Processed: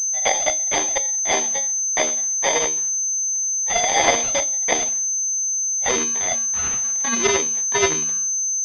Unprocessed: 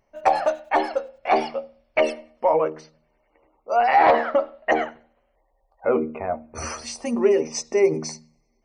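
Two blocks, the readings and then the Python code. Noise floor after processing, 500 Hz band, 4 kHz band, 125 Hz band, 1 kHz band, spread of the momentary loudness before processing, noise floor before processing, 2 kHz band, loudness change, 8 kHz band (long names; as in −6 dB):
−23 dBFS, −4.5 dB, +12.0 dB, +0.5 dB, −4.5 dB, 13 LU, −68 dBFS, +4.0 dB, +4.5 dB, +24.0 dB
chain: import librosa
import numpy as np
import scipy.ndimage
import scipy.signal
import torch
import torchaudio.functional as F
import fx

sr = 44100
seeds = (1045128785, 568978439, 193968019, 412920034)

y = (np.kron(scipy.signal.resample_poly(x, 1, 8), np.eye(8)[0]) * 8)[:len(x)]
y = fx.env_phaser(y, sr, low_hz=290.0, high_hz=2000.0, full_db=-10.5)
y = fx.pwm(y, sr, carrier_hz=6200.0)
y = y * librosa.db_to_amplitude(-4.5)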